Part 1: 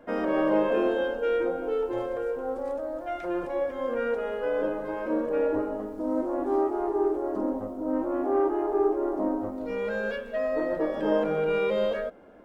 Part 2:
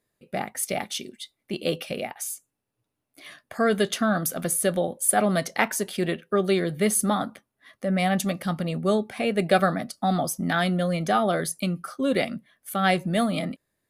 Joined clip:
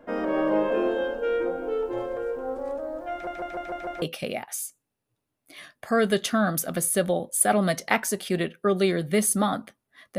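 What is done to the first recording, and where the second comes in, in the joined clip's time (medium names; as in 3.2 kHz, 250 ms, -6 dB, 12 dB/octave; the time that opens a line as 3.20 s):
part 1
3.12 s: stutter in place 0.15 s, 6 plays
4.02 s: go over to part 2 from 1.70 s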